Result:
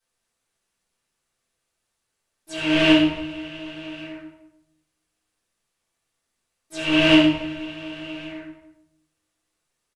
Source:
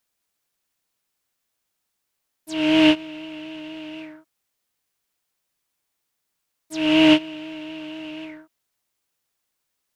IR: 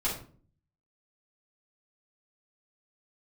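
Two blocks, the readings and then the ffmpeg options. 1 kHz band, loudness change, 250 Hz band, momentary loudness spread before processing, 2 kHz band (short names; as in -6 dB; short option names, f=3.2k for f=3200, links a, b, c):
0.0 dB, -1.0 dB, -0.5 dB, 19 LU, +3.0 dB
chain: -filter_complex "[0:a]asplit=2[a][b];[b]adelay=268.2,volume=-22dB,highshelf=f=4k:g=-6.04[c];[a][c]amix=inputs=2:normalize=0[d];[1:a]atrim=start_sample=2205,asetrate=23373,aresample=44100[e];[d][e]afir=irnorm=-1:irlink=0,volume=-8.5dB"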